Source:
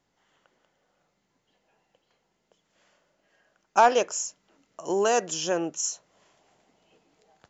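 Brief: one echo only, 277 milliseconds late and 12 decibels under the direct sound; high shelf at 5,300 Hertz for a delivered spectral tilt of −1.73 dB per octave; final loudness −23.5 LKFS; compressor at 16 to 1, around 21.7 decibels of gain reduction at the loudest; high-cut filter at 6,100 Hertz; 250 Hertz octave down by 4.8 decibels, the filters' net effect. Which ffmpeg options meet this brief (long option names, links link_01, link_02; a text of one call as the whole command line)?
ffmpeg -i in.wav -af "lowpass=6100,equalizer=frequency=250:width_type=o:gain=-8,highshelf=frequency=5300:gain=-4.5,acompressor=threshold=-35dB:ratio=16,aecho=1:1:277:0.251,volume=17.5dB" out.wav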